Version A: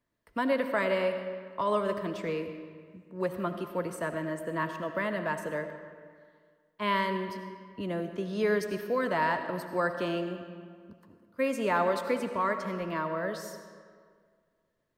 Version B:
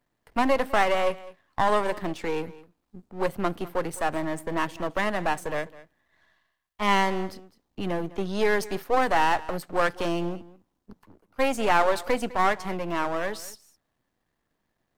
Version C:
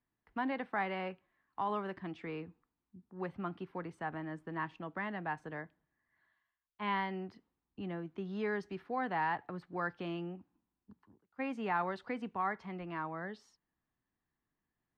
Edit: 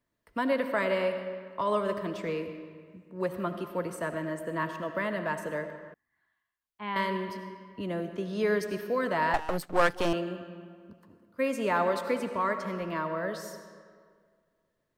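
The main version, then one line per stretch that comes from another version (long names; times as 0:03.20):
A
0:05.94–0:06.96: punch in from C
0:09.34–0:10.13: punch in from B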